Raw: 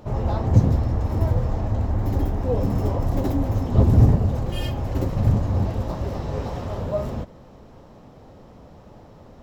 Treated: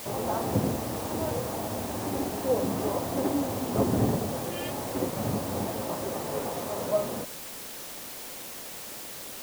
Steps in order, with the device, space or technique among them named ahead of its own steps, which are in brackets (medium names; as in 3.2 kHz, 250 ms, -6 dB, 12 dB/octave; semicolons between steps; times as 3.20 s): wax cylinder (band-pass 260–2300 Hz; wow and flutter; white noise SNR 10 dB)